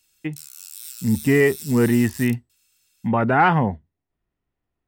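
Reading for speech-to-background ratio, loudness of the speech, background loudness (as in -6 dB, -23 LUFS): 16.0 dB, -20.0 LUFS, -36.0 LUFS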